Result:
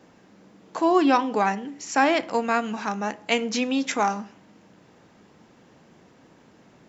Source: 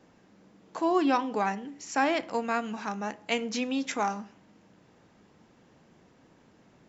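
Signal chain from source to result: low shelf 71 Hz -7.5 dB; gain +6 dB

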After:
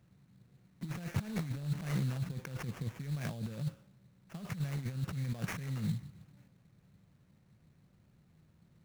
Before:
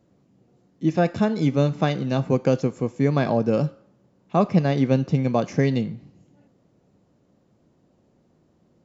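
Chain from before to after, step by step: negative-ratio compressor -28 dBFS, ratio -1; band shelf 560 Hz -15 dB 2.8 oct; sample-rate reducer 4100 Hz, jitter 20%; gain -5 dB

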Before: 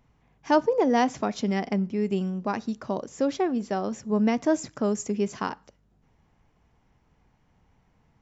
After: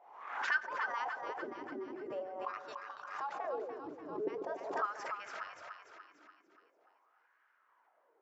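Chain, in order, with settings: spectral gate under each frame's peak -15 dB weak; wah 0.44 Hz 290–1600 Hz, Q 6.7; on a send: split-band echo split 730 Hz, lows 0.145 s, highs 0.291 s, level -6 dB; on the sum: backwards sustainer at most 63 dB/s; gain +10 dB

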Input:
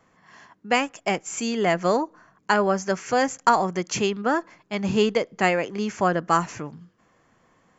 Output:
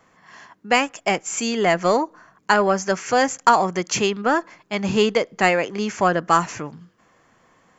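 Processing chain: low shelf 410 Hz -4.5 dB; in parallel at -10 dB: soft clip -19 dBFS, distortion -10 dB; on the sum: gain +3 dB

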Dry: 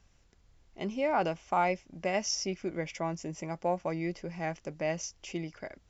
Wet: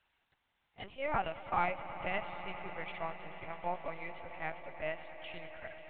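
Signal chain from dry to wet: HPF 760 Hz 12 dB/oct; LPC vocoder at 8 kHz pitch kept; swelling echo 0.108 s, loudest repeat 5, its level -17 dB; gain -1.5 dB

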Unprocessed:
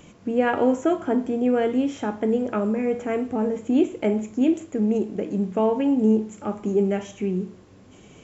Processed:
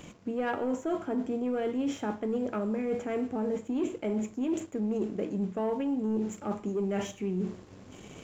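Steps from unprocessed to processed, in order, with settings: sample leveller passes 1; reverse; compressor 6:1, threshold -29 dBFS, peak gain reduction 15 dB; reverse

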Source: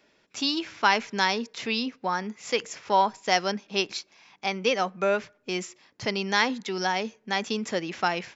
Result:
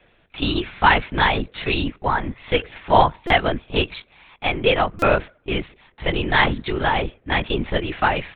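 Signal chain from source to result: LPC vocoder at 8 kHz whisper; stuck buffer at 3.27/4.99, samples 128, times 10; gain +7 dB

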